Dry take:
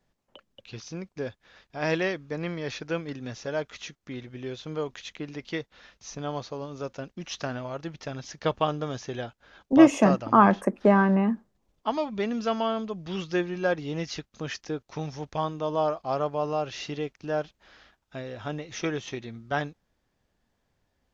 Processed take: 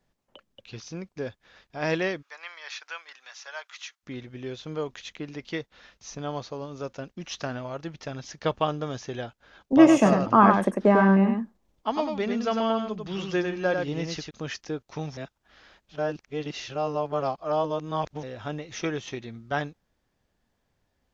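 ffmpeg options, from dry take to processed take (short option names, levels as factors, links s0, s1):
-filter_complex "[0:a]asplit=3[s0][s1][s2];[s0]afade=t=out:st=2.21:d=0.02[s3];[s1]highpass=f=910:w=0.5412,highpass=f=910:w=1.3066,afade=t=in:st=2.21:d=0.02,afade=t=out:st=4.02:d=0.02[s4];[s2]afade=t=in:st=4.02:d=0.02[s5];[s3][s4][s5]amix=inputs=3:normalize=0,asettb=1/sr,asplit=3[s6][s7][s8];[s6]atrim=end=9.774[s9];[s7]atrim=start=9.77:end=14.31,asetpts=PTS-STARTPTS,afade=t=in:d=0.004:c=qsin,afade=t=out:st=4.536:d=0.004:c=qsin,aecho=1:1:98:0.596,atrim=end_sample=200214[s10];[s8]atrim=start=14.306[s11];[s9][s10]acrossfade=d=0.004:c1=hsin:c2=qsin[s12];[s12][s11]acrossfade=d=0.004:c1=qsin:c2=hsin,asplit=3[s13][s14][s15];[s13]atrim=end=15.172[s16];[s14]atrim=start=15.168:end=18.232,asetpts=PTS-STARTPTS,areverse[s17];[s15]atrim=start=18.228[s18];[s16][s17]acrossfade=d=0.004:c1=hsin:c2=hsin[s19];[s19][s18]acrossfade=d=0.004:c1=hsin:c2=hsin"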